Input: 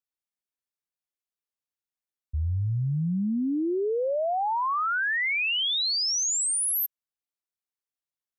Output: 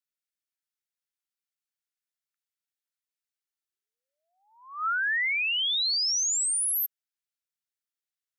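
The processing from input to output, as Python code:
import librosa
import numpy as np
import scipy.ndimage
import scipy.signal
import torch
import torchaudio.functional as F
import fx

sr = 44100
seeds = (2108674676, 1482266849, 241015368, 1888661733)

y = scipy.signal.sosfilt(scipy.signal.cheby1(6, 1.0, 1300.0, 'highpass', fs=sr, output='sos'), x)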